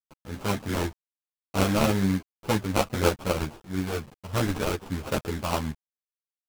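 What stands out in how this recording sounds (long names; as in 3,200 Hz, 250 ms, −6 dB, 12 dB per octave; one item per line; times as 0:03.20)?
a quantiser's noise floor 8 bits, dither none
sample-and-hold tremolo
aliases and images of a low sample rate 1,900 Hz, jitter 20%
a shimmering, thickened sound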